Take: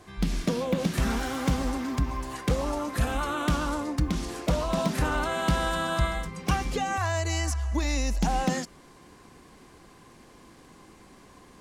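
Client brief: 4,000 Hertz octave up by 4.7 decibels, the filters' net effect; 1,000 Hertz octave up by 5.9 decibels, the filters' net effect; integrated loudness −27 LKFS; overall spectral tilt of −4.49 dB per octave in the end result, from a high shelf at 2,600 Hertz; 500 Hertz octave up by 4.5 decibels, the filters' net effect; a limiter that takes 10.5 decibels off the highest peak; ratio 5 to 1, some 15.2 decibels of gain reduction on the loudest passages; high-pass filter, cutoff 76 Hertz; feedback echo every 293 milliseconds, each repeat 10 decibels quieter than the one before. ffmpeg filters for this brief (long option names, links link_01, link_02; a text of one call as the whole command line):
ffmpeg -i in.wav -af "highpass=76,equalizer=frequency=500:width_type=o:gain=3.5,equalizer=frequency=1000:width_type=o:gain=6.5,highshelf=frequency=2600:gain=-3.5,equalizer=frequency=4000:width_type=o:gain=8.5,acompressor=threshold=-37dB:ratio=5,alimiter=level_in=7dB:limit=-24dB:level=0:latency=1,volume=-7dB,aecho=1:1:293|586|879|1172:0.316|0.101|0.0324|0.0104,volume=14dB" out.wav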